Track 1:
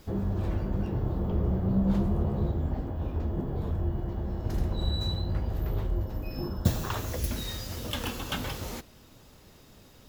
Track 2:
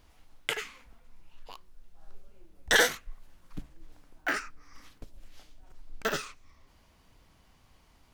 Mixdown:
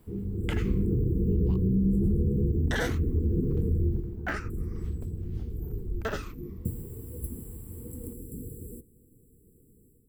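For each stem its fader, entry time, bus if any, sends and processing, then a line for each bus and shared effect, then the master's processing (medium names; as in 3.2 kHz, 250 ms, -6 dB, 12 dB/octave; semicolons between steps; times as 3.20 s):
3.89 s -4.5 dB -> 4.11 s -14 dB, 0.00 s, no send, FFT band-reject 500–7400 Hz; level rider gain up to 10.5 dB
+0.5 dB, 0.00 s, no send, treble shelf 2.1 kHz -11 dB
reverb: none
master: hum notches 50/100 Hz; peak limiter -18 dBFS, peak gain reduction 7.5 dB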